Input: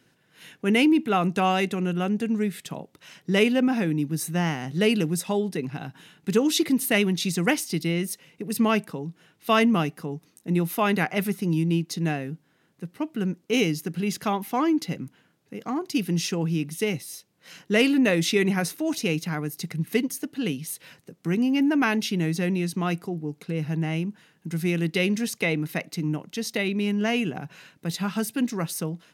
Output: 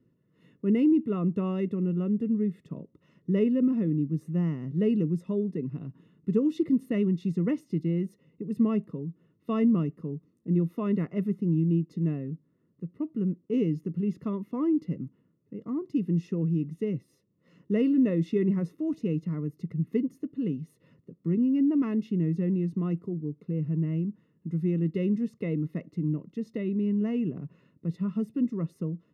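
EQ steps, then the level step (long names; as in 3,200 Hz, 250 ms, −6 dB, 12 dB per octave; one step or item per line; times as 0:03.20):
moving average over 56 samples
0.0 dB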